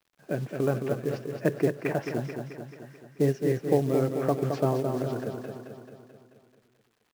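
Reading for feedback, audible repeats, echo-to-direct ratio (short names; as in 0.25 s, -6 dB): 58%, 7, -4.0 dB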